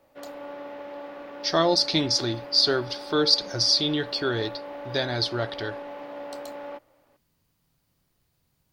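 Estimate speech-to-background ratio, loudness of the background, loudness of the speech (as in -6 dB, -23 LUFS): 15.5 dB, -39.0 LUFS, -23.5 LUFS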